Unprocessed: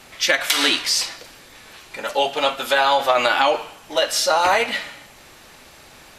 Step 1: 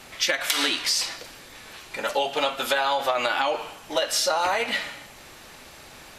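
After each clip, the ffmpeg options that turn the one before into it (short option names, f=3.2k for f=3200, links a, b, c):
-af "acompressor=threshold=-20dB:ratio=6"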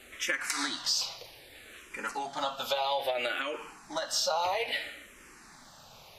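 -filter_complex "[0:a]asplit=2[a][b];[b]afreqshift=-0.61[c];[a][c]amix=inputs=2:normalize=1,volume=-4.5dB"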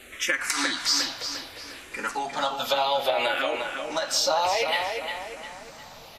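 -filter_complex "[0:a]asplit=2[a][b];[b]adelay=354,lowpass=f=4.1k:p=1,volume=-5.5dB,asplit=2[c][d];[d]adelay=354,lowpass=f=4.1k:p=1,volume=0.45,asplit=2[e][f];[f]adelay=354,lowpass=f=4.1k:p=1,volume=0.45,asplit=2[g][h];[h]adelay=354,lowpass=f=4.1k:p=1,volume=0.45,asplit=2[i][j];[j]adelay=354,lowpass=f=4.1k:p=1,volume=0.45[k];[a][c][e][g][i][k]amix=inputs=6:normalize=0,volume=5.5dB"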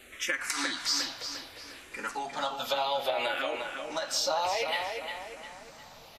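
-af "aresample=32000,aresample=44100,volume=-5.5dB"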